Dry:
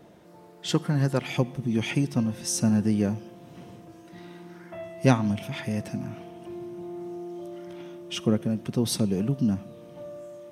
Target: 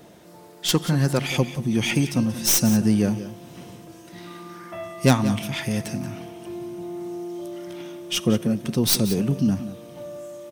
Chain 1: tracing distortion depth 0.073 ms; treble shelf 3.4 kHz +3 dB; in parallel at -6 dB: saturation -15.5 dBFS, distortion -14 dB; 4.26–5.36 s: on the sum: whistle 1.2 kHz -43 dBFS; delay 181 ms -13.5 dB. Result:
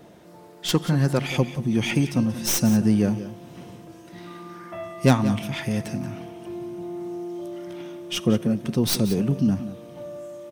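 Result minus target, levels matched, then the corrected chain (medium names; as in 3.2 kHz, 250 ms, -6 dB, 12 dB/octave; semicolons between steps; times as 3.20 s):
8 kHz band -4.0 dB
tracing distortion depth 0.073 ms; treble shelf 3.4 kHz +9.5 dB; in parallel at -6 dB: saturation -15.5 dBFS, distortion -13 dB; 4.26–5.36 s: on the sum: whistle 1.2 kHz -43 dBFS; delay 181 ms -13.5 dB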